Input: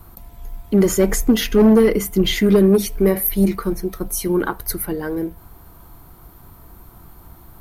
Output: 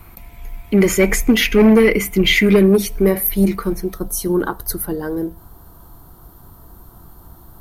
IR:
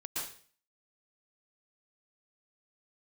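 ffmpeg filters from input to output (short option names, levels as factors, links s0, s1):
-filter_complex "[0:a]asetnsamples=n=441:p=0,asendcmd='2.63 equalizer g 2;3.94 equalizer g -12.5',equalizer=f=2300:t=o:w=0.51:g=15[s0];[1:a]atrim=start_sample=2205,afade=t=out:st=0.15:d=0.01,atrim=end_sample=7056[s1];[s0][s1]afir=irnorm=-1:irlink=0,volume=2.24"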